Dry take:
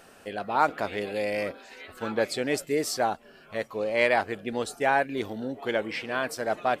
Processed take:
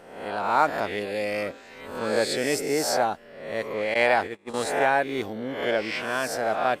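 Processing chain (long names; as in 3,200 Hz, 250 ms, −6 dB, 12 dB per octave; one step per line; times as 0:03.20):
peak hold with a rise ahead of every peak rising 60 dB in 0.85 s
0:03.94–0:04.54: noise gate −27 dBFS, range −27 dB
one half of a high-frequency compander decoder only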